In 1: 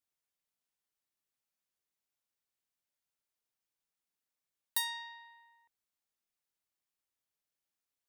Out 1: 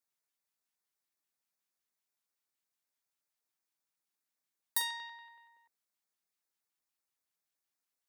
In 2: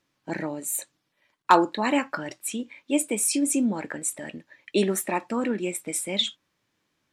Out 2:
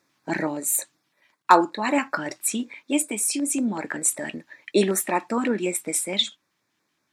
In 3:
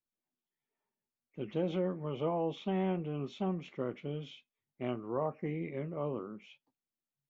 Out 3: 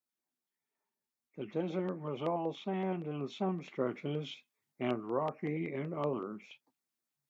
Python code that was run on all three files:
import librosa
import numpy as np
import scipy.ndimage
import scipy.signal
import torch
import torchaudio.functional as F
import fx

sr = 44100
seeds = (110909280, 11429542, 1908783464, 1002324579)

y = fx.filter_lfo_notch(x, sr, shape='square', hz=5.3, low_hz=510.0, high_hz=3000.0, q=2.2)
y = fx.rider(y, sr, range_db=4, speed_s=0.5)
y = fx.highpass(y, sr, hz=220.0, slope=6)
y = y * 10.0 ** (3.0 / 20.0)